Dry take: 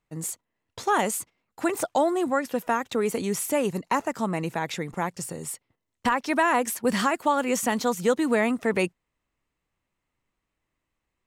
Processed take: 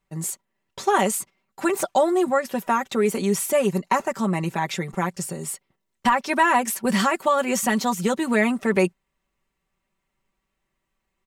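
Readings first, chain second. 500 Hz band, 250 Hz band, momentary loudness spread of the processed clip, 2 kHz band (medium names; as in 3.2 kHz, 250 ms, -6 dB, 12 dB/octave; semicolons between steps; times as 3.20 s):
+3.0 dB, +3.5 dB, 10 LU, +3.0 dB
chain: comb 5.2 ms, depth 74%; trim +1.5 dB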